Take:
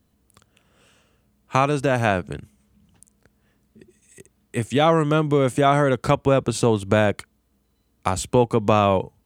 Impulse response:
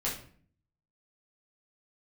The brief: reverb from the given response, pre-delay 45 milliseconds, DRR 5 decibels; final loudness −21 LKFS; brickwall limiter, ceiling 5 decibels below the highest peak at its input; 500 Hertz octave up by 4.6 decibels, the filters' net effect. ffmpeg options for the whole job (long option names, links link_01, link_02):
-filter_complex "[0:a]equalizer=frequency=500:width_type=o:gain=5.5,alimiter=limit=-5.5dB:level=0:latency=1,asplit=2[link_01][link_02];[1:a]atrim=start_sample=2205,adelay=45[link_03];[link_02][link_03]afir=irnorm=-1:irlink=0,volume=-10.5dB[link_04];[link_01][link_04]amix=inputs=2:normalize=0,volume=-3.5dB"